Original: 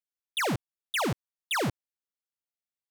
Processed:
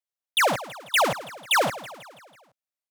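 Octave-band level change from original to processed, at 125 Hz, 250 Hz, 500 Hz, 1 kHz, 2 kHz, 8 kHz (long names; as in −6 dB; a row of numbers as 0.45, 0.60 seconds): −5.0, −3.0, +7.5, +9.5, +8.0, +7.5 decibels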